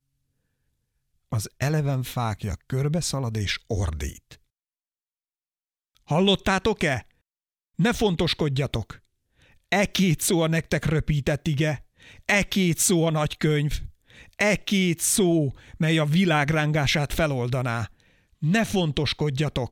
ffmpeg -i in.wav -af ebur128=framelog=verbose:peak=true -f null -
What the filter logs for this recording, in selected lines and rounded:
Integrated loudness:
  I:         -23.9 LUFS
  Threshold: -34.5 LUFS
Loudness range:
  LRA:         6.1 LU
  Threshold: -44.8 LUFS
  LRA low:   -28.7 LUFS
  LRA high:  -22.6 LUFS
True peak:
  Peak:       -7.9 dBFS